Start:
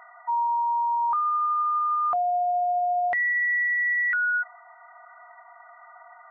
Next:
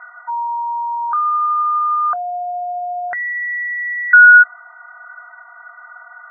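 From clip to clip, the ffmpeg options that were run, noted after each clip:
-af "lowpass=f=1500:t=q:w=13,volume=0.841"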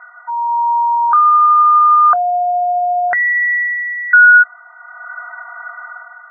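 -af "bandreject=f=50:t=h:w=6,bandreject=f=100:t=h:w=6,bandreject=f=150:t=h:w=6,dynaudnorm=f=110:g=9:m=3.16,volume=0.891"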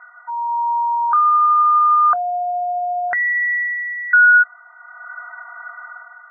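-af "equalizer=f=630:t=o:w=0.77:g=-2.5,volume=0.631"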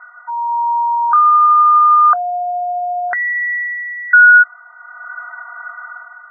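-af "lowpass=f=1600:w=0.5412,lowpass=f=1600:w=1.3066,crystalizer=i=9:c=0,volume=0.891"

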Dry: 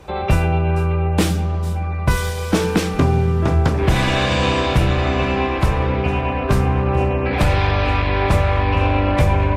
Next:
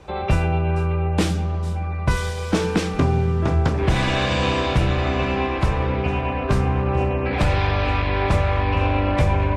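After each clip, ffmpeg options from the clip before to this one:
-af "lowpass=8600,volume=0.708"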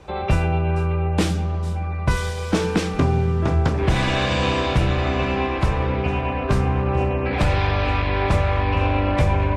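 -af anull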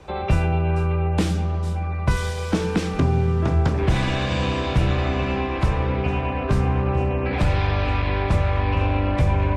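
-filter_complex "[0:a]acrossover=split=290[s0][s1];[s1]acompressor=threshold=0.0631:ratio=6[s2];[s0][s2]amix=inputs=2:normalize=0"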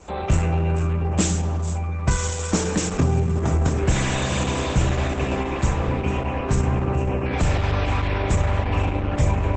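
-af "aexciter=amount=6.7:drive=7.3:freq=6600" -ar 48000 -c:a libopus -b:a 10k

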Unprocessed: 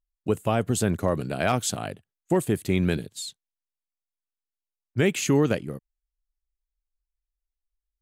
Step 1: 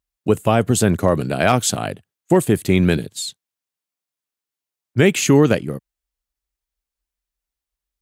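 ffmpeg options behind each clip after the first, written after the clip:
-af "highpass=64,volume=2.51"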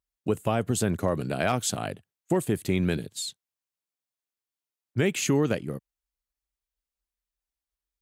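-af "acompressor=threshold=0.0891:ratio=1.5,volume=0.501"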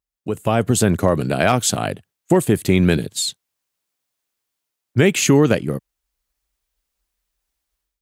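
-af "dynaudnorm=f=300:g=3:m=4.47"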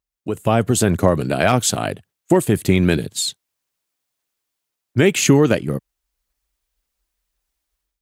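-af "aphaser=in_gain=1:out_gain=1:delay=3.3:decay=0.21:speed=1.9:type=sinusoidal"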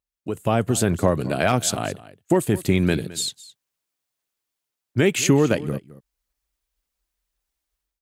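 -af "aecho=1:1:215:0.119,volume=0.631"

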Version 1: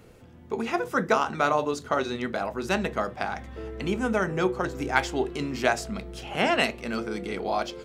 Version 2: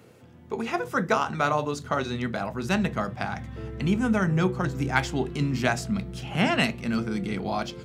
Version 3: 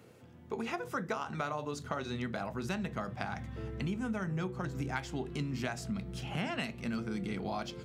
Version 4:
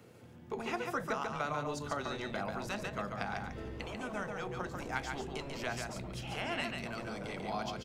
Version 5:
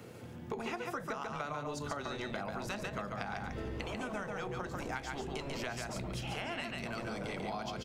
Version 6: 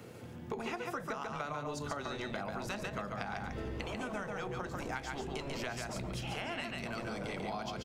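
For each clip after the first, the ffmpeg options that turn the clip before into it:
-af "highpass=f=97:w=0.5412,highpass=f=97:w=1.3066,asubboost=boost=7.5:cutoff=160"
-af "acompressor=threshold=0.0398:ratio=5,volume=0.596"
-filter_complex "[0:a]acrossover=split=370|3300[s0][s1][s2];[s0]aeval=exprs='0.01*(abs(mod(val(0)/0.01+3,4)-2)-1)':c=same[s3];[s3][s1][s2]amix=inputs=3:normalize=0,aecho=1:1:142:0.596"
-af "acompressor=threshold=0.00708:ratio=6,volume=2.24"
-af "aecho=1:1:122:0.0668"

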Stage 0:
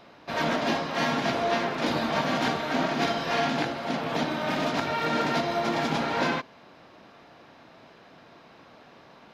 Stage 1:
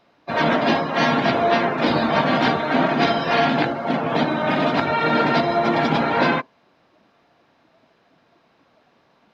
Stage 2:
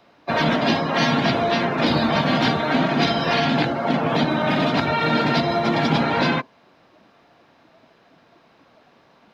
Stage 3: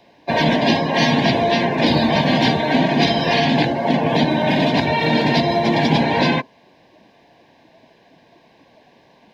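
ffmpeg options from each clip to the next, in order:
-af "afftdn=nr=16:nf=-36,volume=2.51"
-filter_complex "[0:a]acrossover=split=210|3000[s0][s1][s2];[s1]acompressor=threshold=0.0631:ratio=6[s3];[s0][s3][s2]amix=inputs=3:normalize=0,volume=1.68"
-af "asuperstop=centerf=1300:order=4:qfactor=2.5,volume=1.5"

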